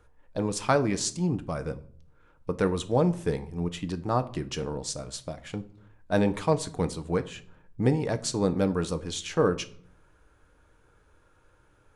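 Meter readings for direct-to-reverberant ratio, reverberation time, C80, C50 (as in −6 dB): 9.0 dB, 0.55 s, 21.5 dB, 17.5 dB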